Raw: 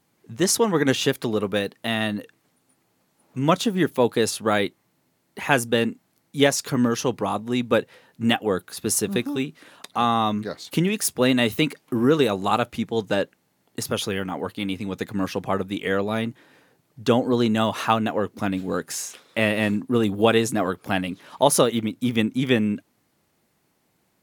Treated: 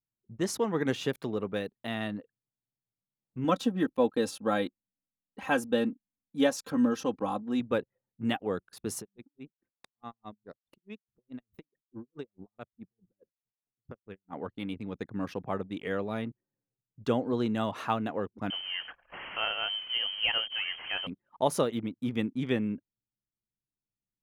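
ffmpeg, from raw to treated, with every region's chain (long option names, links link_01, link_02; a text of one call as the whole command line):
ffmpeg -i in.wav -filter_complex "[0:a]asettb=1/sr,asplit=3[link_01][link_02][link_03];[link_01]atrim=end=3.444[link_04];[link_02]atrim=start=3.44:end=7.6,asetpts=PTS-STARTPTS,afade=type=in:duration=0.004:curve=qsin,afade=type=out:start_time=4.156:duration=0.004:curve=qsin,equalizer=frequency=2100:width_type=o:width=0.23:gain=-8.5,aecho=1:1:3.8:0.76,atrim=end_sample=183456[link_05];[link_03]atrim=start=7.596[link_06];[link_04][link_05]acrossfade=duration=0.004:curve1=hsin:curve2=qsin[link_07];[link_07][link_06]acrossfade=duration=0.004:curve1=qsin:curve2=hsin,asettb=1/sr,asplit=3[link_08][link_09][link_10];[link_08]atrim=end=9.014[link_11];[link_09]atrim=start=9.01:end=14.33,asetpts=PTS-STARTPTS,afade=type=in:duration=0.004:curve=qsin,afade=type=out:start_time=5.316:duration=0.004:curve=qsin,bandreject=frequency=3100:width=19,acompressor=threshold=-33dB:ratio=2:attack=3.2:release=140:knee=1:detection=peak,aeval=exprs='val(0)*pow(10,-32*(0.5-0.5*cos(2*PI*4.7*n/s))/20)':channel_layout=same[link_12];[link_10]atrim=start=14.326[link_13];[link_11][link_12]acrossfade=duration=0.004:curve1=hsin:curve2=qsin[link_14];[link_14][link_13]acrossfade=duration=0.004:curve1=qsin:curve2=hsin,asettb=1/sr,asplit=3[link_15][link_16][link_17];[link_15]atrim=end=18.504[link_18];[link_16]atrim=start=18.5:end=21.07,asetpts=PTS-STARTPTS,afade=type=in:duration=0.004:curve=qsin,afade=type=out:start_time=2.566:duration=0.004:curve=qsin,aeval=exprs='val(0)+0.5*0.0376*sgn(val(0))':channel_layout=same,acompressor=mode=upward:threshold=-24dB:ratio=2.5:attack=3.2:release=140:knee=2.83:detection=peak,lowpass=frequency=2800:width_type=q:width=0.5098,lowpass=frequency=2800:width_type=q:width=0.6013,lowpass=frequency=2800:width_type=q:width=0.9,lowpass=frequency=2800:width_type=q:width=2.563,afreqshift=-3300[link_19];[link_17]atrim=start=21.066[link_20];[link_18][link_19]acrossfade=duration=0.004:curve1=hsin:curve2=qsin[link_21];[link_21][link_20]acrossfade=duration=0.004:curve1=qsin:curve2=hsin,anlmdn=2.51,highshelf=frequency=3100:gain=-8.5,volume=-8.5dB" out.wav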